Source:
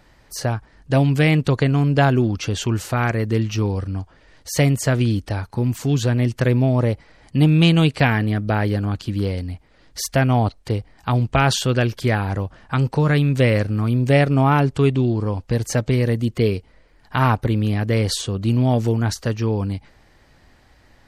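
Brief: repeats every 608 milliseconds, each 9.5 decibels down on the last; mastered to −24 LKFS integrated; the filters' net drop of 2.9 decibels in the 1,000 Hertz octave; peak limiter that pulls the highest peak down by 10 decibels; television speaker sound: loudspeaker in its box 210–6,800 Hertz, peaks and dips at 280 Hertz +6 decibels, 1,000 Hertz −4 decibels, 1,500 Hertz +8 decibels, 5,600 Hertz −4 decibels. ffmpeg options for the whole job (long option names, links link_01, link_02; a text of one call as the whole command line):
ffmpeg -i in.wav -af "equalizer=frequency=1000:width_type=o:gain=-4.5,alimiter=limit=-13.5dB:level=0:latency=1,highpass=frequency=210:width=0.5412,highpass=frequency=210:width=1.3066,equalizer=frequency=280:width_type=q:width=4:gain=6,equalizer=frequency=1000:width_type=q:width=4:gain=-4,equalizer=frequency=1500:width_type=q:width=4:gain=8,equalizer=frequency=5600:width_type=q:width=4:gain=-4,lowpass=frequency=6800:width=0.5412,lowpass=frequency=6800:width=1.3066,aecho=1:1:608|1216|1824|2432:0.335|0.111|0.0365|0.012,volume=0.5dB" out.wav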